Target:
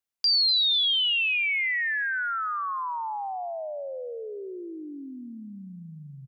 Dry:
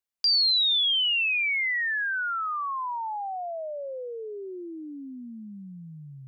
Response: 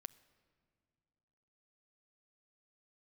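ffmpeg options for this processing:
-filter_complex "[0:a]asplit=2[a][b];[b]adelay=245,lowpass=f=3.4k:p=1,volume=-14dB,asplit=2[c][d];[d]adelay=245,lowpass=f=3.4k:p=1,volume=0.29,asplit=2[e][f];[f]adelay=245,lowpass=f=3.4k:p=1,volume=0.29[g];[a][c][e][g]amix=inputs=4:normalize=0"

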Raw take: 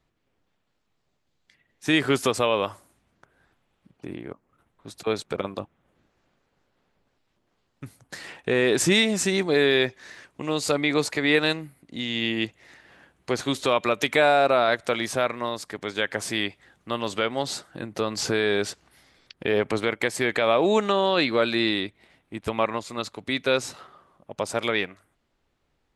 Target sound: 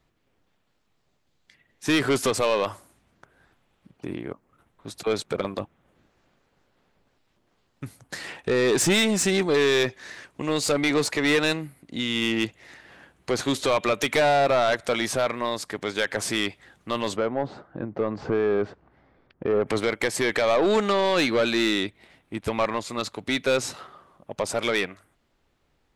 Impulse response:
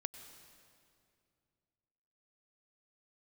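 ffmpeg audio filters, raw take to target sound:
-filter_complex "[0:a]asplit=3[a][b][c];[a]afade=t=out:st=17.15:d=0.02[d];[b]lowpass=1.1k,afade=t=in:st=17.15:d=0.02,afade=t=out:st=19.66:d=0.02[e];[c]afade=t=in:st=19.66:d=0.02[f];[d][e][f]amix=inputs=3:normalize=0,asoftclip=type=tanh:threshold=-19dB,volume=3.5dB"

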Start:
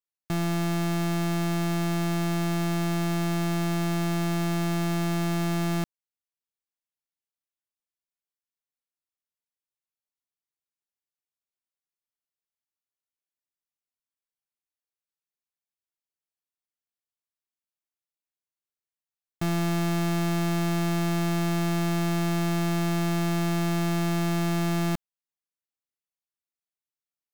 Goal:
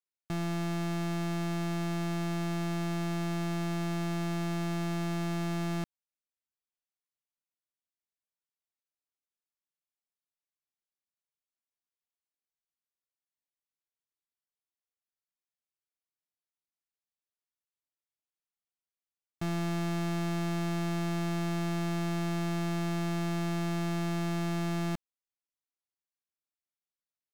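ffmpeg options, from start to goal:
-af "highshelf=f=12k:g=-11,volume=-6dB"

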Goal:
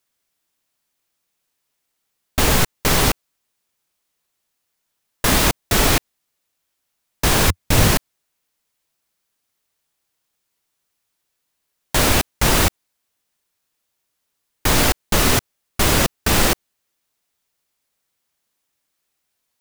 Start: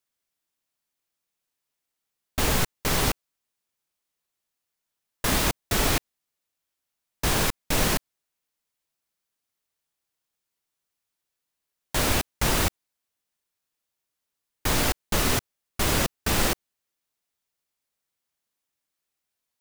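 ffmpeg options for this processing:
-filter_complex "[0:a]asettb=1/sr,asplit=3[a][b][c];[a]atrim=end=7.454[d];[b]atrim=start=7.45:end=7.91,asetpts=PTS-STARTPTS,afade=t=in:d=0.004:c=qsin,afade=t=out:st=0.456:d=0.004:c=qsin,equalizer=f=90:t=o:w=1.2:g=11.5[e];[c]atrim=start=7.906[f];[d][e]acrossfade=d=0.004:c1=hsin:c2=qsin[g];[g][f]acrossfade=d=0.004:c1=qsin:c2=hsin,asplit=2[h][i];[i]alimiter=limit=-15.5dB:level=0:latency=1:release=120,volume=-2dB[j];[h][j]amix=inputs=2:normalize=0,volume=3.5dB"

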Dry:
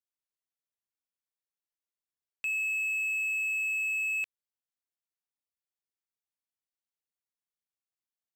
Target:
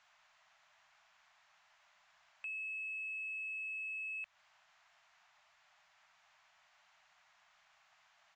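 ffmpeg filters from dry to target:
-filter_complex "[0:a]aeval=exprs='val(0)+0.5*0.00282*sgn(val(0))':c=same,acrossover=split=190[a][b];[b]acompressor=threshold=-38dB:ratio=2.5[c];[a][c]amix=inputs=2:normalize=0,afftfilt=real='re*(1-between(b*sr/4096,210,590))':imag='im*(1-between(b*sr/4096,210,590))':win_size=4096:overlap=0.75,aresample=16000,asoftclip=type=tanh:threshold=-36.5dB,aresample=44100,acrossover=split=530 2700:gain=0.126 1 0.158[d][e][f];[d][e][f]amix=inputs=3:normalize=0,volume=2dB"

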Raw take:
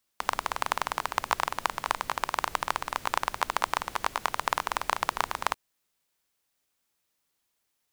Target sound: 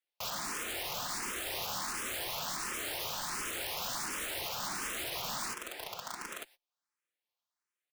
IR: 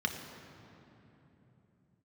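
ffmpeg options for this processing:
-filter_complex "[0:a]lowshelf=f=140:g=-8,aecho=1:1:5.7:0.31,asplit=2[a][b];[b]aecho=0:1:899:0.282[c];[a][c]amix=inputs=2:normalize=0,agate=range=-34dB:threshold=-54dB:ratio=16:detection=peak,asplit=2[d][e];[e]highpass=f=720:p=1,volume=36dB,asoftclip=type=tanh:threshold=-4dB[f];[d][f]amix=inputs=2:normalize=0,lowpass=f=2.7k:p=1,volume=-6dB,highpass=f=110:p=1,alimiter=limit=-18.5dB:level=0:latency=1:release=358,aeval=exprs='(mod(25.1*val(0)+1,2)-1)/25.1':c=same,asplit=2[g][h];[h]afreqshift=1.4[i];[g][i]amix=inputs=2:normalize=1,volume=-1dB"

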